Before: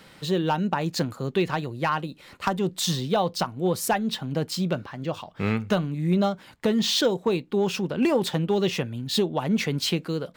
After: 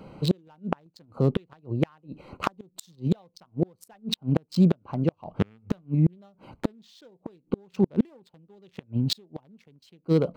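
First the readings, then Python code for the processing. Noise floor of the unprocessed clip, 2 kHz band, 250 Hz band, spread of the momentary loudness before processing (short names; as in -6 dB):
-51 dBFS, -12.5 dB, -1.5 dB, 6 LU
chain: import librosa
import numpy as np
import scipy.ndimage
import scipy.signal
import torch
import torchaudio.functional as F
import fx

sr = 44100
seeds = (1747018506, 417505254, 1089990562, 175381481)

y = fx.wiener(x, sr, points=25)
y = fx.gate_flip(y, sr, shuts_db=-19.0, range_db=-38)
y = y * librosa.db_to_amplitude(8.5)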